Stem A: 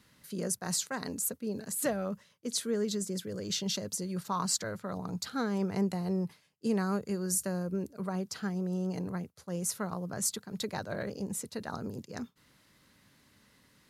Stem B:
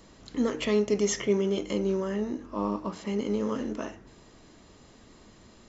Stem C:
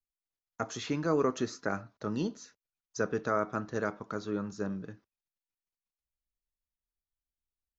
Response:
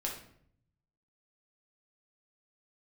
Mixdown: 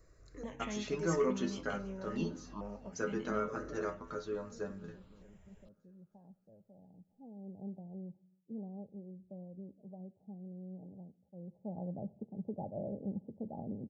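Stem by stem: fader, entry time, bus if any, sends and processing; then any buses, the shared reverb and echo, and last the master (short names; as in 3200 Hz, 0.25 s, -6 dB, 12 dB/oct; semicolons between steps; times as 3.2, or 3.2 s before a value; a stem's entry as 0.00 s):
7.09 s -21.5 dB -> 7.63 s -14 dB -> 11.32 s -14 dB -> 11.83 s -2 dB, 1.85 s, send -17 dB, no echo send, rippled Chebyshev low-pass 850 Hz, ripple 6 dB
-11.5 dB, 0.00 s, no send, no echo send, low shelf 140 Hz +10.5 dB; step phaser 2.3 Hz 860–1900 Hz
+1.5 dB, 0.00 s, send -14 dB, echo send -20.5 dB, metallic resonator 83 Hz, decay 0.26 s, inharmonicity 0.002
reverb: on, RT60 0.65 s, pre-delay 5 ms
echo: feedback echo 0.319 s, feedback 52%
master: dry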